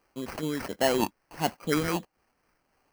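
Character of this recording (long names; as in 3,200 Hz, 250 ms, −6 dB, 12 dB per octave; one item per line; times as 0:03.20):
a quantiser's noise floor 12 bits, dither triangular
phaser sweep stages 6, 1.5 Hz, lowest notch 710–4,700 Hz
aliases and images of a low sample rate 3,600 Hz, jitter 0%
amplitude modulation by smooth noise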